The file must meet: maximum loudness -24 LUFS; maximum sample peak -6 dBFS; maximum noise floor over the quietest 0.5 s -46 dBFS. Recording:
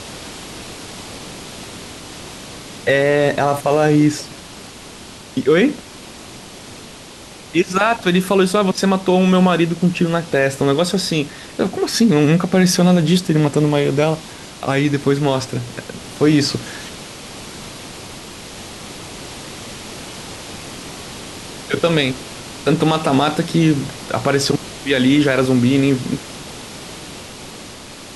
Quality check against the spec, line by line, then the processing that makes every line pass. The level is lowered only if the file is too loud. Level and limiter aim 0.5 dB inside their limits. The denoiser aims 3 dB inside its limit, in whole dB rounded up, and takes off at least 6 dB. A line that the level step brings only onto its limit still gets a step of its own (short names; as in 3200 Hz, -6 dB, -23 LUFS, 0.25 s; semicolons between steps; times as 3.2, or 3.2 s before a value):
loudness -16.5 LUFS: fail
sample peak -3.5 dBFS: fail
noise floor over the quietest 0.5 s -38 dBFS: fail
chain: denoiser 6 dB, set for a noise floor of -38 dBFS; gain -8 dB